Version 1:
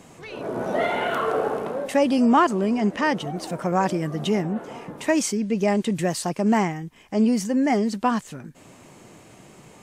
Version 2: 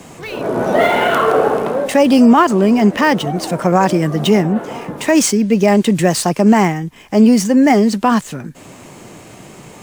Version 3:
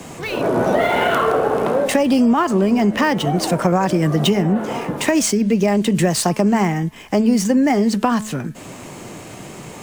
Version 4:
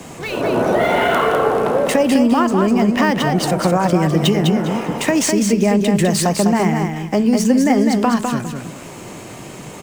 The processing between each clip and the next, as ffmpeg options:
ffmpeg -i in.wav -filter_complex "[0:a]acrossover=split=160|1000|2300[link_01][link_02][link_03][link_04];[link_04]acrusher=bits=2:mode=log:mix=0:aa=0.000001[link_05];[link_01][link_02][link_03][link_05]amix=inputs=4:normalize=0,alimiter=level_in=11.5dB:limit=-1dB:release=50:level=0:latency=1,volume=-1dB" out.wav
ffmpeg -i in.wav -filter_complex "[0:a]acrossover=split=120[link_01][link_02];[link_02]acompressor=threshold=-16dB:ratio=6[link_03];[link_01][link_03]amix=inputs=2:normalize=0,bandreject=frequency=215.6:width_type=h:width=4,bandreject=frequency=431.2:width_type=h:width=4,bandreject=frequency=646.8:width_type=h:width=4,bandreject=frequency=862.4:width_type=h:width=4,bandreject=frequency=1078:width_type=h:width=4,bandreject=frequency=1293.6:width_type=h:width=4,bandreject=frequency=1509.2:width_type=h:width=4,bandreject=frequency=1724.8:width_type=h:width=4,bandreject=frequency=1940.4:width_type=h:width=4,bandreject=frequency=2156:width_type=h:width=4,bandreject=frequency=2371.6:width_type=h:width=4,bandreject=frequency=2587.2:width_type=h:width=4,bandreject=frequency=2802.8:width_type=h:width=4,bandreject=frequency=3018.4:width_type=h:width=4,bandreject=frequency=3234:width_type=h:width=4,volume=2.5dB" out.wav
ffmpeg -i in.wav -af "aecho=1:1:203|406|609:0.562|0.135|0.0324" out.wav

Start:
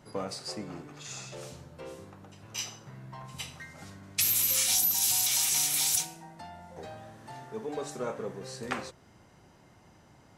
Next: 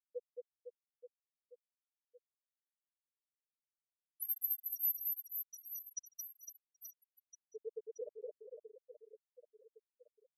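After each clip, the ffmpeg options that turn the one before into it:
ffmpeg -i in.wav -af "volume=22dB,asoftclip=hard,volume=-22dB,afftfilt=real='re*gte(hypot(re,im),0.2)':imag='im*gte(hypot(re,im),0.2)':win_size=1024:overlap=0.75,aecho=1:1:220|506|877.8|1361|1989:0.631|0.398|0.251|0.158|0.1,volume=-5dB" out.wav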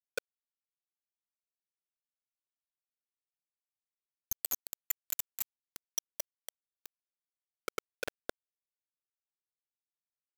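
ffmpeg -i in.wav -af "areverse,acompressor=threshold=-47dB:ratio=8,areverse,acrusher=bits=6:mix=0:aa=0.000001,volume=13.5dB" out.wav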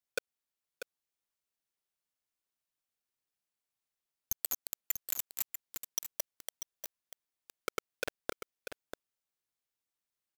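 ffmpeg -i in.wav -af "acompressor=threshold=-34dB:ratio=4,aecho=1:1:641:0.355,volume=4dB" out.wav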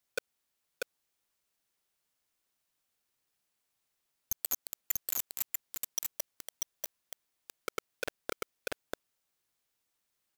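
ffmpeg -i in.wav -af "alimiter=level_in=5.5dB:limit=-24dB:level=0:latency=1:release=19,volume=-5.5dB,volume=8.5dB" out.wav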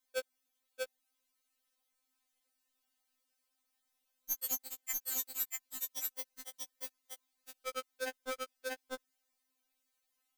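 ffmpeg -i in.wav -af "afftfilt=real='re*3.46*eq(mod(b,12),0)':imag='im*3.46*eq(mod(b,12),0)':win_size=2048:overlap=0.75,volume=1.5dB" out.wav

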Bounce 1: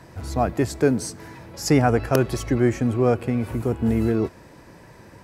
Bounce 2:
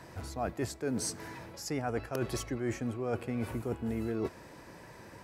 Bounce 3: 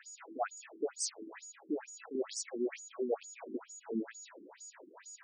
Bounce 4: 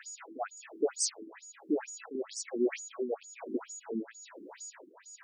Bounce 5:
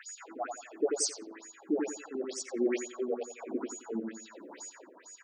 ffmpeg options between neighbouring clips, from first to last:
ffmpeg -i in.wav -af "lowshelf=frequency=290:gain=-5.5,areverse,acompressor=threshold=-28dB:ratio=10,areverse,volume=-2dB" out.wav
ffmpeg -i in.wav -af "aeval=exprs='val(0)+0.00316*sin(2*PI*6800*n/s)':channel_layout=same,afftfilt=real='re*between(b*sr/1024,280*pow(6800/280,0.5+0.5*sin(2*PI*2.2*pts/sr))/1.41,280*pow(6800/280,0.5+0.5*sin(2*PI*2.2*pts/sr))*1.41)':imag='im*between(b*sr/1024,280*pow(6800/280,0.5+0.5*sin(2*PI*2.2*pts/sr))/1.41,280*pow(6800/280,0.5+0.5*sin(2*PI*2.2*pts/sr))*1.41)':win_size=1024:overlap=0.75,volume=3dB" out.wav
ffmpeg -i in.wav -af "tremolo=f=1.1:d=0.61,volume=6.5dB" out.wav
ffmpeg -i in.wav -filter_complex "[0:a]asplit=2[link_01][link_02];[link_02]adelay=88,lowpass=frequency=1700:poles=1,volume=-4dB,asplit=2[link_03][link_04];[link_04]adelay=88,lowpass=frequency=1700:poles=1,volume=0.34,asplit=2[link_05][link_06];[link_06]adelay=88,lowpass=frequency=1700:poles=1,volume=0.34,asplit=2[link_07][link_08];[link_08]adelay=88,lowpass=frequency=1700:poles=1,volume=0.34[link_09];[link_01][link_03][link_05][link_07][link_09]amix=inputs=5:normalize=0" out.wav

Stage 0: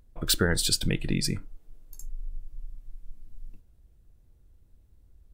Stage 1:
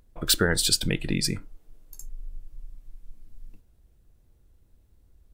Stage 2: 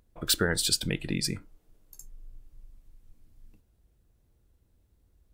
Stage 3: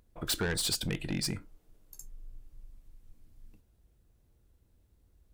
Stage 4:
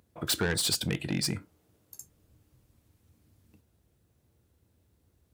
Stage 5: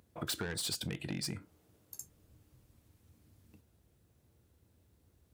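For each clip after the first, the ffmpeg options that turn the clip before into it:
ffmpeg -i in.wav -af "lowshelf=frequency=190:gain=-5,volume=3dB" out.wav
ffmpeg -i in.wav -af "highpass=frequency=41:poles=1,volume=-3.5dB" out.wav
ffmpeg -i in.wav -af "asoftclip=type=tanh:threshold=-26dB" out.wav
ffmpeg -i in.wav -af "highpass=frequency=74:width=0.5412,highpass=frequency=74:width=1.3066,volume=3dB" out.wav
ffmpeg -i in.wav -af "acompressor=threshold=-35dB:ratio=6" out.wav

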